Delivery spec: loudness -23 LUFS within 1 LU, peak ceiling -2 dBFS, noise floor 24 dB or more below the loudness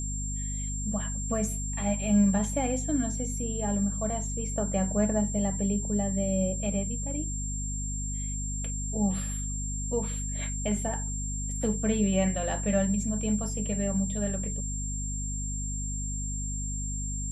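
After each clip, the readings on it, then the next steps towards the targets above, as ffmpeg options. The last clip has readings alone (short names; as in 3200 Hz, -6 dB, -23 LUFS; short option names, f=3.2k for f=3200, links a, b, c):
hum 50 Hz; harmonics up to 250 Hz; hum level -31 dBFS; steady tone 7400 Hz; tone level -35 dBFS; loudness -29.5 LUFS; peak -13.5 dBFS; loudness target -23.0 LUFS
-> -af "bandreject=f=50:t=h:w=4,bandreject=f=100:t=h:w=4,bandreject=f=150:t=h:w=4,bandreject=f=200:t=h:w=4,bandreject=f=250:t=h:w=4"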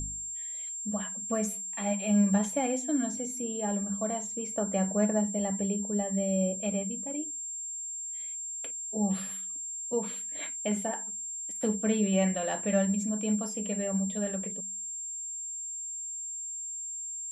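hum none; steady tone 7400 Hz; tone level -35 dBFS
-> -af "bandreject=f=7.4k:w=30"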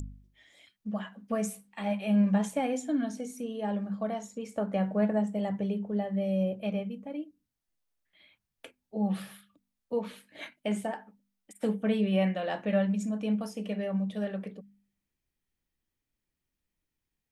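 steady tone none; loudness -31.5 LUFS; peak -15.5 dBFS; loudness target -23.0 LUFS
-> -af "volume=8.5dB"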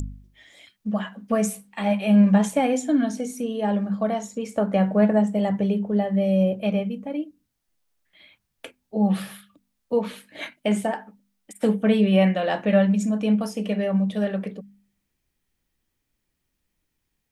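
loudness -23.0 LUFS; peak -7.0 dBFS; noise floor -78 dBFS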